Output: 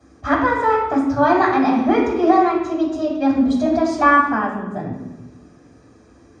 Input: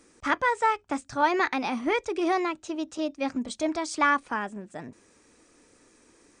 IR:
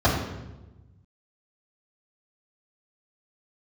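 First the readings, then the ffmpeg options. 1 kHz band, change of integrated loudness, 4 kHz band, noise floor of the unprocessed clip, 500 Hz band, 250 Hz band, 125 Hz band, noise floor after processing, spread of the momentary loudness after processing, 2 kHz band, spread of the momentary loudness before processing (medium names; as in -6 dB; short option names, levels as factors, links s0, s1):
+9.5 dB, +10.0 dB, +1.0 dB, -61 dBFS, +10.5 dB, +13.0 dB, +17.0 dB, -50 dBFS, 13 LU, +6.0 dB, 11 LU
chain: -filter_complex "[1:a]atrim=start_sample=2205[s0];[0:a][s0]afir=irnorm=-1:irlink=0,volume=0.282"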